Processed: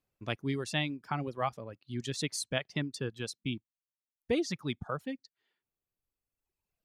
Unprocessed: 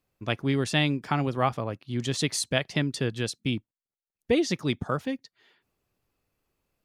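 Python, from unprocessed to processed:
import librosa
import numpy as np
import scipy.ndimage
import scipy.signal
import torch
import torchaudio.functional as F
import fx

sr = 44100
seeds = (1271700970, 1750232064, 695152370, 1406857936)

y = fx.dereverb_blind(x, sr, rt60_s=1.8)
y = y * 10.0 ** (-6.5 / 20.0)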